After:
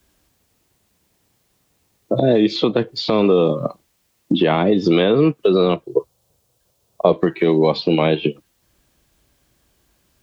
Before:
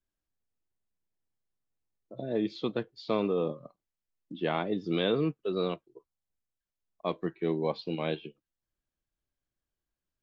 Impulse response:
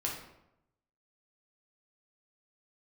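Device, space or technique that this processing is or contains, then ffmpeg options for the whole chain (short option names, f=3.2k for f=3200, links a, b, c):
mastering chain: -filter_complex "[0:a]highpass=45,equalizer=f=1.5k:t=o:w=0.61:g=-3,acrossover=split=320|2600[a][b][c];[a]acompressor=threshold=-43dB:ratio=4[d];[b]acompressor=threshold=-38dB:ratio=4[e];[c]acompressor=threshold=-56dB:ratio=4[f];[d][e][f]amix=inputs=3:normalize=0,acompressor=threshold=-41dB:ratio=2.5,alimiter=level_in=33.5dB:limit=-1dB:release=50:level=0:latency=1,asettb=1/sr,asplit=3[g][h][i];[g]atrim=end=5.834[j];[h]atrim=start=5.83:end=7.13,asetpts=PTS-STARTPTS,afade=t=in:d=0.004:c=qsin,afade=t=out:st=1.296:d=0.004:c=qsin,equalizer=f=125:t=o:w=1:g=7,equalizer=f=250:t=o:w=1:g=-6,equalizer=f=500:t=o:w=1:g=9,equalizer=f=2k:t=o:w=1:g=-8[k];[i]atrim=start=7.126[l];[j][k]acrossfade=d=0.004:c1=hsin:c2=qsin[m];[m][l]acrossfade=d=0.004:c1=qsin:c2=hsin,volume=-4.5dB"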